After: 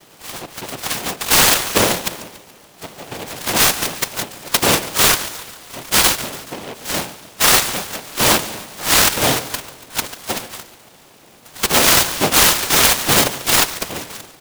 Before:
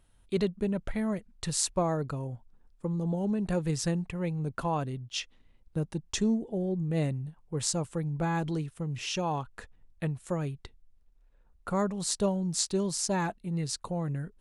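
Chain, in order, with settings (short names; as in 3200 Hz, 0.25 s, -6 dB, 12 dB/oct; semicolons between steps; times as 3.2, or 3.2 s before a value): spectral delay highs early, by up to 0.228 s; HPF 1400 Hz 12 dB/oct; AGC gain up to 11 dB; added noise pink -56 dBFS; in parallel at -3 dB: bit-crush 5-bit; on the sum: noise vocoder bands 2; on a send: feedback echo 0.142 s, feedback 53%, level -15.5 dB; on the sum: maximiser +11 dB; noise-modulated delay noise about 1900 Hz, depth 0.13 ms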